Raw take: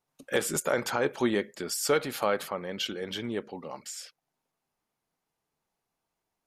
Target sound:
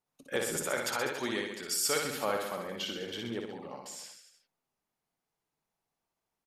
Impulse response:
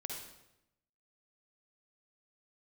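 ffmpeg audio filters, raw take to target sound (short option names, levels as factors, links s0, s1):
-filter_complex "[0:a]asettb=1/sr,asplit=3[s0][s1][s2];[s0]atrim=end=0.654[s3];[s1]atrim=start=0.65:end=2.04,asetpts=PTS-STARTPTS,afade=t=in:d=0.004:c=qsin,afade=t=out:st=1.386:d=0.004:c=qsin,tiltshelf=f=1200:g=-5.5[s4];[s2]atrim=start=2.036[s5];[s3][s4]acrossfade=d=0.004:c1=hsin:c2=qsin[s6];[s6][s5]acrossfade=d=0.004:c1=qsin:c2=hsin,aecho=1:1:60|126|198.6|278.5|366.3:0.631|0.398|0.251|0.158|0.1,volume=0.531"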